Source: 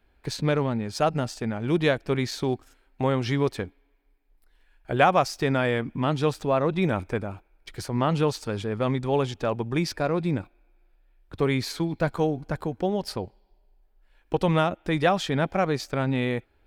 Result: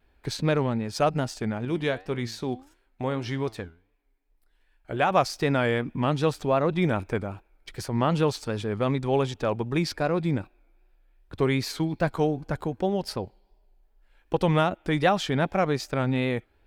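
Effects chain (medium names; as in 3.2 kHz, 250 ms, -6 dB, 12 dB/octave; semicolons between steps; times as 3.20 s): 1.65–5.11 s: flange 1.7 Hz, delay 7.9 ms, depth 4.2 ms, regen +82%; vibrato 2.6 Hz 67 cents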